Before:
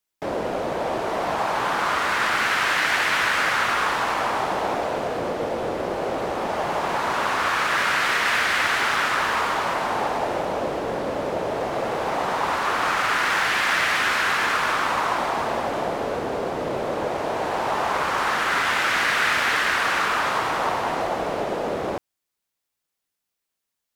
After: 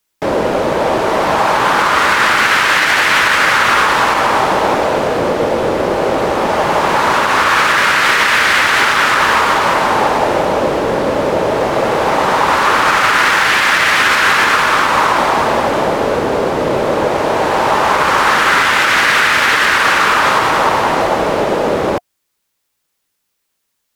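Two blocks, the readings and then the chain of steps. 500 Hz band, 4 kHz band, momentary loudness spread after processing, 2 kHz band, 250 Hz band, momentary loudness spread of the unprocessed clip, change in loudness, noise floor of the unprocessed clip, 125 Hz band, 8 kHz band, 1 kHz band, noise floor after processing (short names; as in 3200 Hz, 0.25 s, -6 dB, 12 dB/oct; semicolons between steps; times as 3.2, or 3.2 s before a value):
+11.5 dB, +10.5 dB, 5 LU, +10.5 dB, +11.5 dB, 7 LU, +10.5 dB, -82 dBFS, +11.5 dB, +10.5 dB, +11.0 dB, -70 dBFS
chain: notch 710 Hz, Q 12; maximiser +13 dB; gain -1 dB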